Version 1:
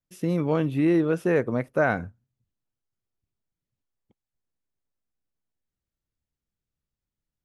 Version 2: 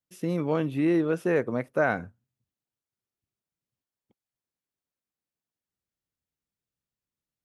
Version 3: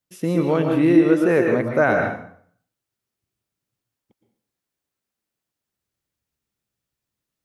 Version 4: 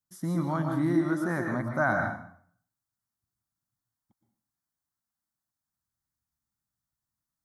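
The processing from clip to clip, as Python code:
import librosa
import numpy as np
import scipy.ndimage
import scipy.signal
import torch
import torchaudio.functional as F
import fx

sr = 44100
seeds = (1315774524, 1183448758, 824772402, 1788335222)

y1 = fx.highpass(x, sr, hz=150.0, slope=6)
y1 = F.gain(torch.from_numpy(y1), -1.5).numpy()
y2 = fx.rev_plate(y1, sr, seeds[0], rt60_s=0.57, hf_ratio=0.85, predelay_ms=105, drr_db=2.5)
y2 = F.gain(torch.from_numpy(y2), 6.0).numpy()
y3 = fx.fixed_phaser(y2, sr, hz=1100.0, stages=4)
y3 = F.gain(torch.from_numpy(y3), -3.5).numpy()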